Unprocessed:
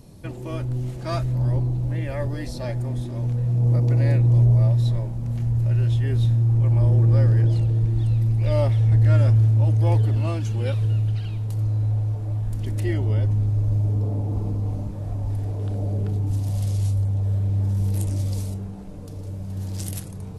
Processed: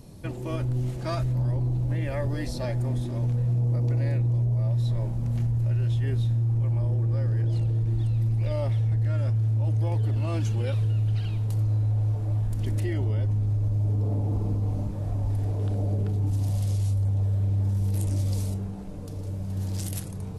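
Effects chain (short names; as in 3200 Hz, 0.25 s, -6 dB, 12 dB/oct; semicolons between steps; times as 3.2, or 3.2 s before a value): limiter -19.5 dBFS, peak gain reduction 11 dB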